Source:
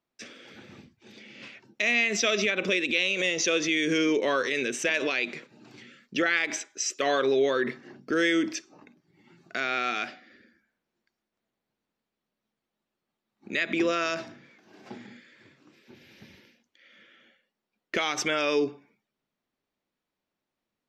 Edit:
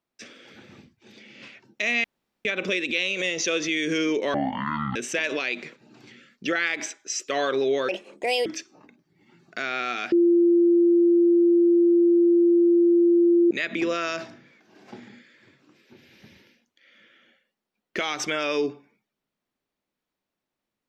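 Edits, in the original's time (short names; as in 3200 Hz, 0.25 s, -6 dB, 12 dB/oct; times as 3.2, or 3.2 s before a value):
2.04–2.45 room tone
4.34–4.66 speed 52%
7.59–8.44 speed 148%
10.1–13.49 bleep 344 Hz -14.5 dBFS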